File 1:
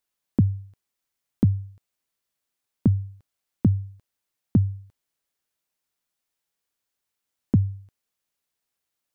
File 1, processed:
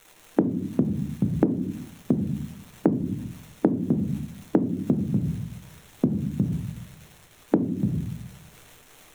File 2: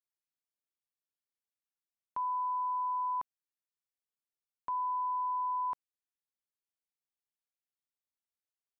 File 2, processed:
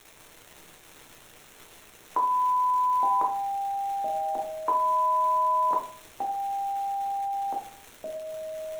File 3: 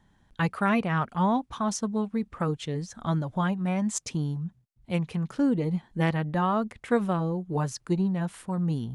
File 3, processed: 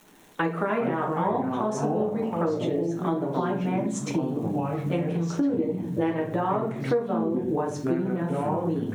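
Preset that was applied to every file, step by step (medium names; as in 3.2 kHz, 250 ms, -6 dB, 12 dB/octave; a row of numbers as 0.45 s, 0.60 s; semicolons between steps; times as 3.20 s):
high-pass 260 Hz 24 dB/octave; tilt EQ -3.5 dB/octave; hum notches 50/100/150/200/250/300/350 Hz; crackle 340 per s -49 dBFS; simulated room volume 43 m³, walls mixed, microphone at 0.71 m; ever faster or slower copies 304 ms, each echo -4 st, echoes 2, each echo -6 dB; peaking EQ 4.8 kHz -11 dB 0.23 oct; harmonic-percussive split harmonic -4 dB; compression 5:1, threshold -32 dBFS; normalise loudness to -27 LUFS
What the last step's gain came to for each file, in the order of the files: +13.0 dB, +14.0 dB, +8.5 dB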